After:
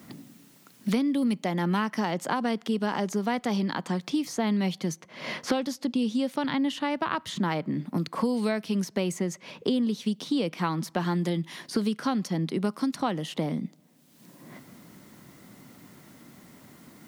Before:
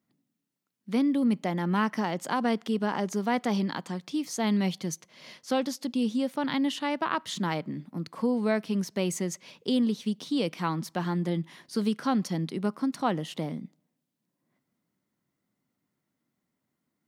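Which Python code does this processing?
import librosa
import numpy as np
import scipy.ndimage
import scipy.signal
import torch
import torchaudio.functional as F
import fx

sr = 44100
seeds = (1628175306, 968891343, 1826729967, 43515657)

y = fx.high_shelf(x, sr, hz=9300.0, db=-6.5, at=(5.77, 6.7))
y = fx.band_squash(y, sr, depth_pct=100)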